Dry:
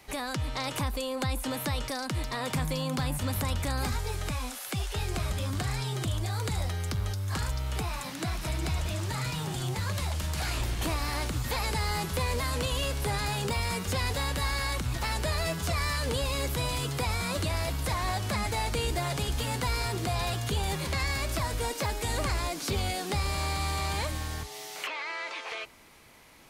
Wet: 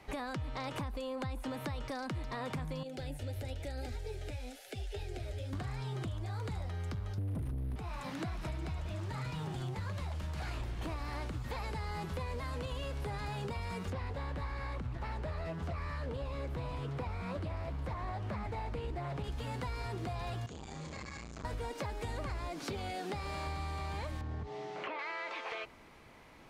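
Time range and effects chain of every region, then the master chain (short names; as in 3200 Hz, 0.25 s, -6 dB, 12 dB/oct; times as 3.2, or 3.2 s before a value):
2.83–5.53 flange 1 Hz, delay 3.3 ms, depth 6.9 ms, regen +45% + fixed phaser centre 450 Hz, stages 4
7.18–7.76 brick-wall FIR band-stop 290–8900 Hz + low shelf 330 Hz +6.5 dB + overdrive pedal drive 35 dB, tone 3500 Hz, clips at -16 dBFS
13.9–19.24 high shelf 3000 Hz -10.5 dB + Doppler distortion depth 0.23 ms
20.46–21.45 ladder low-pass 7500 Hz, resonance 70% + flutter echo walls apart 5.4 m, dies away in 0.44 s + core saturation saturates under 780 Hz
22.64–23.47 low shelf 99 Hz -11.5 dB + notch 1100 Hz, Q 20
24.21–24.99 tilt -3.5 dB/oct + compressor 4:1, threshold -25 dBFS + BPF 120–7500 Hz
whole clip: LPF 1700 Hz 6 dB/oct; compressor, threshold -37 dBFS; gain +1 dB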